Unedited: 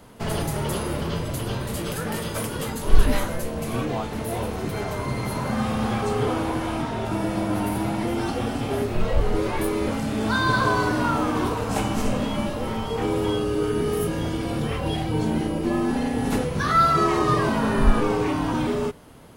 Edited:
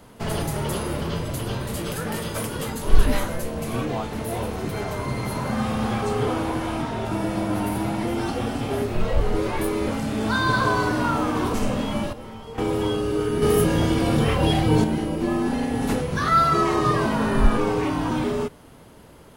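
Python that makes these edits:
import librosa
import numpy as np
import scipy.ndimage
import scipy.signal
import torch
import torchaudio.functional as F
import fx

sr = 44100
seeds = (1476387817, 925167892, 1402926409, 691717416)

y = fx.edit(x, sr, fx.cut(start_s=11.54, length_s=0.43),
    fx.clip_gain(start_s=12.56, length_s=0.45, db=-10.5),
    fx.clip_gain(start_s=13.85, length_s=1.42, db=6.0), tone=tone)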